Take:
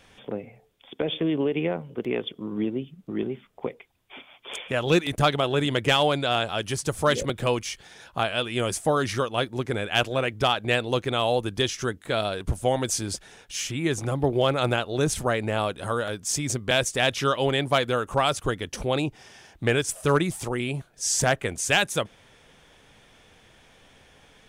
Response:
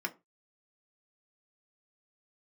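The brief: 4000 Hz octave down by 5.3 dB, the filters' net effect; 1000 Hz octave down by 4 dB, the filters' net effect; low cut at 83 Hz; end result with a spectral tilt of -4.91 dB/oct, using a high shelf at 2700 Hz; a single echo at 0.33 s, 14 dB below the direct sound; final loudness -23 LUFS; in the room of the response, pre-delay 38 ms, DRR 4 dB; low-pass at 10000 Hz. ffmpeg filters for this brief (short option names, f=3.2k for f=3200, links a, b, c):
-filter_complex "[0:a]highpass=83,lowpass=10k,equalizer=f=1k:t=o:g=-5,highshelf=f=2.7k:g=-4,equalizer=f=4k:t=o:g=-3.5,aecho=1:1:330:0.2,asplit=2[a][b];[1:a]atrim=start_sample=2205,adelay=38[c];[b][c]afir=irnorm=-1:irlink=0,volume=-7.5dB[d];[a][d]amix=inputs=2:normalize=0,volume=3.5dB"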